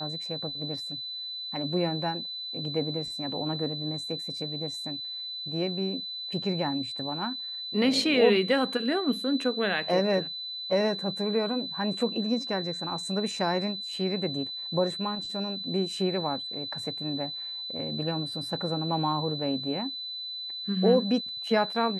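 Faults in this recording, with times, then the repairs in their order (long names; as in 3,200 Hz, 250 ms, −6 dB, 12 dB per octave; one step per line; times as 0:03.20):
whistle 4,000 Hz −34 dBFS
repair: notch filter 4,000 Hz, Q 30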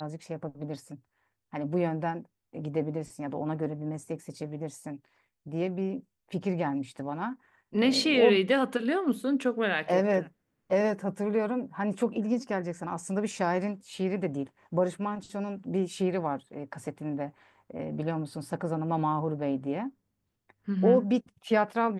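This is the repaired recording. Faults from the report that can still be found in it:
none of them is left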